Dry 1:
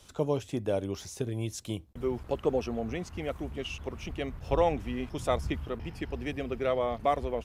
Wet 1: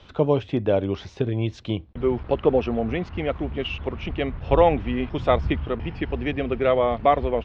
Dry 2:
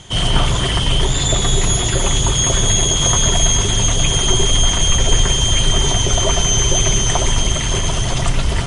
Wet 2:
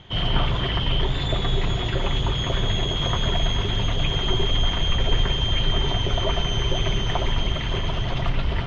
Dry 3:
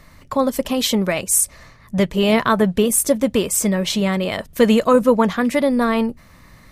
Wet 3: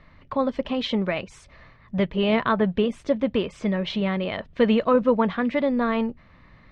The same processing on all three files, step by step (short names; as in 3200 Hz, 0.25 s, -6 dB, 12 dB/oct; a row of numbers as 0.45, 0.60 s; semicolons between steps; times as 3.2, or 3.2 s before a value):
LPF 3600 Hz 24 dB/oct; match loudness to -24 LUFS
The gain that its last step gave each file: +8.5, -6.0, -5.5 dB